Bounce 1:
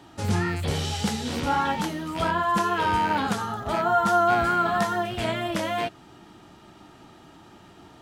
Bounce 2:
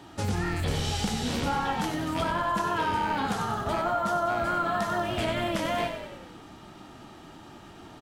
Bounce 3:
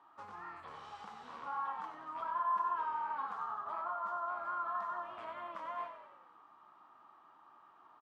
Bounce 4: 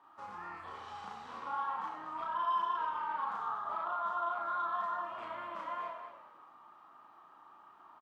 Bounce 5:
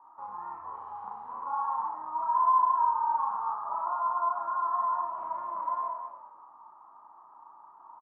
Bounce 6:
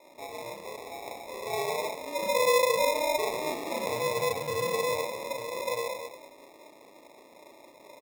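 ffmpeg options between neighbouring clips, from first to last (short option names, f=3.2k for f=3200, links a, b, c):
-filter_complex "[0:a]acompressor=threshold=-27dB:ratio=6,asplit=8[a][b][c][d][e][f][g][h];[b]adelay=95,afreqshift=-41,volume=-8dB[i];[c]adelay=190,afreqshift=-82,volume=-12.7dB[j];[d]adelay=285,afreqshift=-123,volume=-17.5dB[k];[e]adelay=380,afreqshift=-164,volume=-22.2dB[l];[f]adelay=475,afreqshift=-205,volume=-26.9dB[m];[g]adelay=570,afreqshift=-246,volume=-31.7dB[n];[h]adelay=665,afreqshift=-287,volume=-36.4dB[o];[a][i][j][k][l][m][n][o]amix=inputs=8:normalize=0,volume=1.5dB"
-af "bandpass=f=1.1k:t=q:w=6.9:csg=0,volume=-1dB"
-filter_complex "[0:a]asoftclip=type=tanh:threshold=-28dB,asplit=2[a][b];[b]aecho=0:1:34.99|242:1|0.398[c];[a][c]amix=inputs=2:normalize=0"
-af "lowpass=f=970:t=q:w=6.5,volume=-4.5dB"
-af "acrusher=samples=29:mix=1:aa=0.000001"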